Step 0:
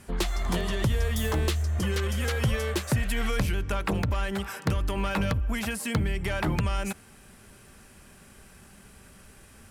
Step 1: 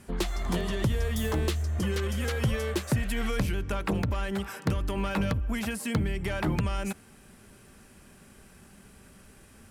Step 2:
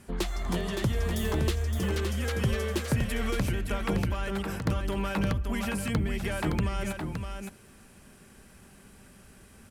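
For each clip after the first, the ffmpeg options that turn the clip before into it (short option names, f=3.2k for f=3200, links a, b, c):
-af "equalizer=f=260:w=0.7:g=4,volume=-3dB"
-af "aecho=1:1:566:0.501,volume=-1dB"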